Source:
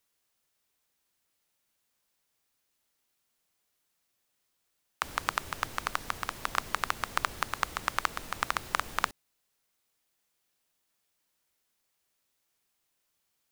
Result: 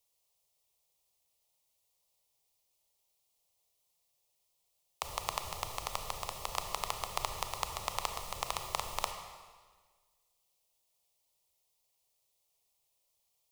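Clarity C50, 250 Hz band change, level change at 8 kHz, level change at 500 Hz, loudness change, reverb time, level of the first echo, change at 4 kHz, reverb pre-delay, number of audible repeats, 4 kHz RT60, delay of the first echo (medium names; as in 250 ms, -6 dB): 7.0 dB, -8.5 dB, +0.5 dB, 0.0 dB, -4.5 dB, 1.5 s, no echo, -1.5 dB, 25 ms, no echo, 1.4 s, no echo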